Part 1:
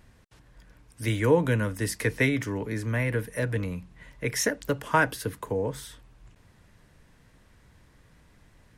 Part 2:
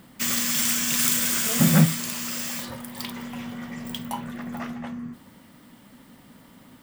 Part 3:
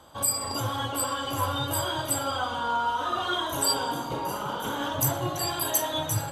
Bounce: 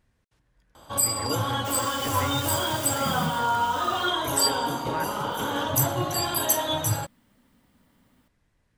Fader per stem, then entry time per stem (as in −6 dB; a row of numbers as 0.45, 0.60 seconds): −12.5, −13.5, +2.5 decibels; 0.00, 1.45, 0.75 seconds